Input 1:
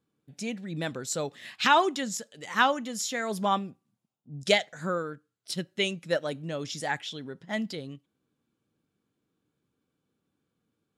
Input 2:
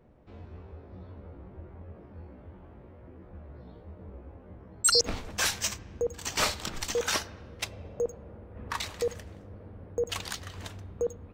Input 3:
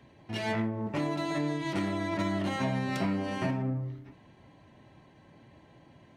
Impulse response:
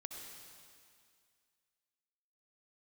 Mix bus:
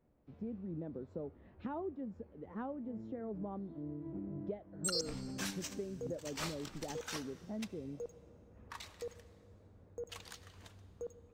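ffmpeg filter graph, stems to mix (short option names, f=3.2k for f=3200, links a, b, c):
-filter_complex "[0:a]lowshelf=f=200:g=-10,volume=2.5dB,asplit=2[a][b];[1:a]aeval=exprs='0.316*(cos(1*acos(clip(val(0)/0.316,-1,1)))-cos(1*PI/2))+0.00501*(cos(7*acos(clip(val(0)/0.316,-1,1)))-cos(7*PI/2))':c=same,volume=-15.5dB,asplit=2[c][d];[d]volume=-8.5dB[e];[2:a]adelay=2400,volume=-8dB[f];[b]apad=whole_len=377757[g];[f][g]sidechaincompress=threshold=-33dB:ratio=8:attack=16:release=317[h];[a][h]amix=inputs=2:normalize=0,asuperpass=centerf=230:order=4:qfactor=0.73,acompressor=threshold=-40dB:ratio=4,volume=0dB[i];[3:a]atrim=start_sample=2205[j];[e][j]afir=irnorm=-1:irlink=0[k];[c][i][k]amix=inputs=3:normalize=0"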